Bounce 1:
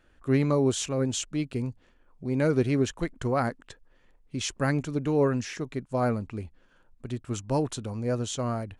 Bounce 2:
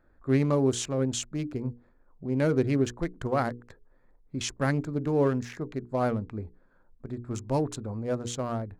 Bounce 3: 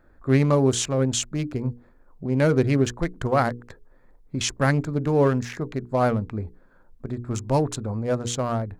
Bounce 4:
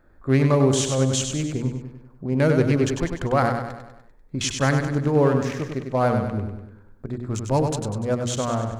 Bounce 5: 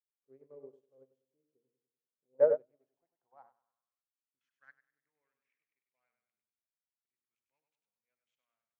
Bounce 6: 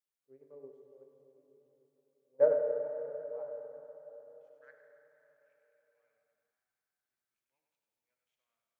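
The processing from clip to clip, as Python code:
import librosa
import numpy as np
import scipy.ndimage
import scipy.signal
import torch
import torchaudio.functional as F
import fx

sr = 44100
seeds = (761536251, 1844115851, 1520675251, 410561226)

y1 = fx.wiener(x, sr, points=15)
y1 = fx.hum_notches(y1, sr, base_hz=60, count=8)
y2 = fx.dynamic_eq(y1, sr, hz=320.0, q=1.3, threshold_db=-39.0, ratio=4.0, max_db=-4)
y2 = y2 * 10.0 ** (7.0 / 20.0)
y3 = fx.echo_feedback(y2, sr, ms=98, feedback_pct=51, wet_db=-6.0)
y4 = fx.spec_box(y3, sr, start_s=2.34, length_s=0.23, low_hz=430.0, high_hz=2000.0, gain_db=11)
y4 = fx.filter_sweep_bandpass(y4, sr, from_hz=460.0, to_hz=2300.0, start_s=2.15, end_s=5.42, q=5.4)
y4 = fx.upward_expand(y4, sr, threshold_db=-37.0, expansion=2.5)
y4 = y4 * 10.0 ** (-6.5 / 20.0)
y5 = fx.rev_plate(y4, sr, seeds[0], rt60_s=4.4, hf_ratio=0.75, predelay_ms=0, drr_db=3.0)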